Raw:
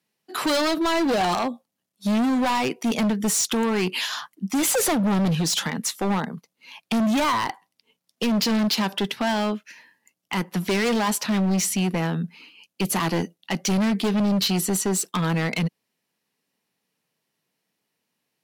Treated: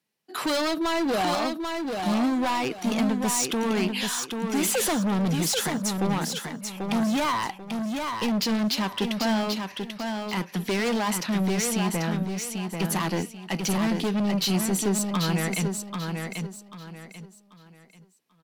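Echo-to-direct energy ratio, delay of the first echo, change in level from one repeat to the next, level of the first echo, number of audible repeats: -4.5 dB, 0.789 s, -10.5 dB, -5.0 dB, 3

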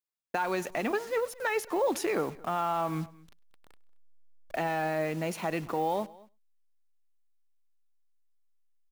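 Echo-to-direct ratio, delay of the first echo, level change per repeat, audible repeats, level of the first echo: -20.5 dB, 0.101 s, no steady repeat, 2, -24.0 dB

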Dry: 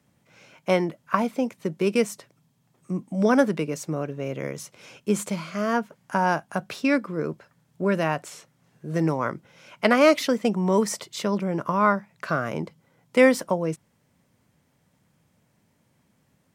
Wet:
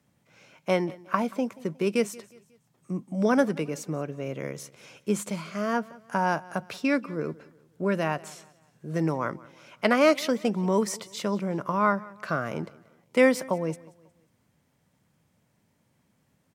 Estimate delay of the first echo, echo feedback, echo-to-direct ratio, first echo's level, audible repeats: 0.181 s, 40%, -21.0 dB, -21.5 dB, 2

